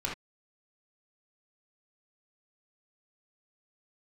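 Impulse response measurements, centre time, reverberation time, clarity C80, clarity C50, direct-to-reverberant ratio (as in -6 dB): 30 ms, not exponential, 14.0 dB, 4.0 dB, -4.5 dB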